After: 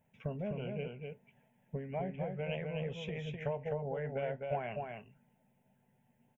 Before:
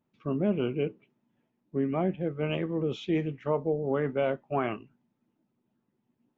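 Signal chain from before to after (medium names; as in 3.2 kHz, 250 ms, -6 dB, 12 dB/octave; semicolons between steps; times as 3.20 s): compression 12:1, threshold -39 dBFS, peak gain reduction 17.5 dB; static phaser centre 1.2 kHz, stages 6; delay 253 ms -4.5 dB; trim +8.5 dB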